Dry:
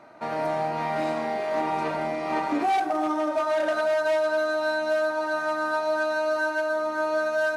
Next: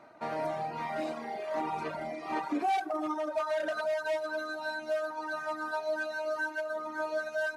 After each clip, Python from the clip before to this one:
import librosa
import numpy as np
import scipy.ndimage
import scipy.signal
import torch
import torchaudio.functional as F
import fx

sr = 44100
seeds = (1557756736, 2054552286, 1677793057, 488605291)

y = fx.dereverb_blind(x, sr, rt60_s=2.0)
y = y * 10.0 ** (-4.5 / 20.0)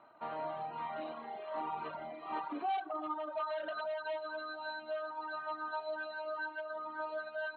y = scipy.signal.sosfilt(scipy.signal.cheby1(6, 9, 4200.0, 'lowpass', fs=sr, output='sos'), x)
y = y * 10.0 ** (-1.5 / 20.0)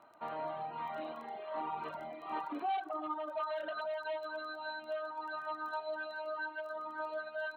y = fx.dmg_crackle(x, sr, seeds[0], per_s=10.0, level_db=-47.0)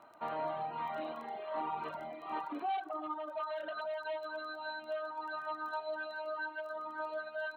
y = fx.rider(x, sr, range_db=10, speed_s=2.0)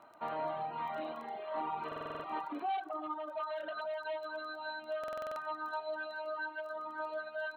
y = fx.buffer_glitch(x, sr, at_s=(1.87, 4.99), block=2048, repeats=7)